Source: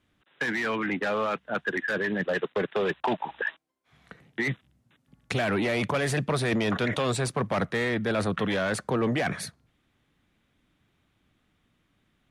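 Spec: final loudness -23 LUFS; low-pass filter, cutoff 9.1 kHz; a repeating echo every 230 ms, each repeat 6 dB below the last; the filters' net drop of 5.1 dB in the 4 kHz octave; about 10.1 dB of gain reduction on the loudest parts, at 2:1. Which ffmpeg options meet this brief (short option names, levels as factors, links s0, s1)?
-af "lowpass=9100,equalizer=f=4000:t=o:g=-6.5,acompressor=threshold=0.00794:ratio=2,aecho=1:1:230|460|690|920|1150|1380:0.501|0.251|0.125|0.0626|0.0313|0.0157,volume=5.01"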